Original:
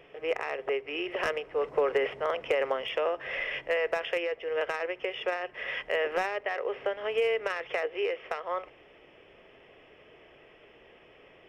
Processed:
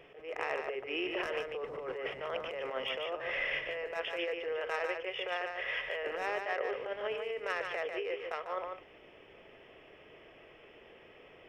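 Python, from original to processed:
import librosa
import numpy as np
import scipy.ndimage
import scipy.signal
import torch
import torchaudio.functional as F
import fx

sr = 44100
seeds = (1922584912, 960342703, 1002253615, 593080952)

y = fx.peak_eq(x, sr, hz=230.0, db=-13.5, octaves=0.66, at=(4.52, 6.03))
y = fx.over_compress(y, sr, threshold_db=-32.0, ratio=-1.0)
y = y + 10.0 ** (-5.5 / 20.0) * np.pad(y, (int(147 * sr / 1000.0), 0))[:len(y)]
y = fx.attack_slew(y, sr, db_per_s=160.0)
y = y * librosa.db_to_amplitude(-4.0)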